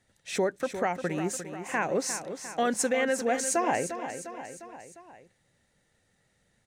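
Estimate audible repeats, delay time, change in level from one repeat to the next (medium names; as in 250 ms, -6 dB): 4, 352 ms, -4.5 dB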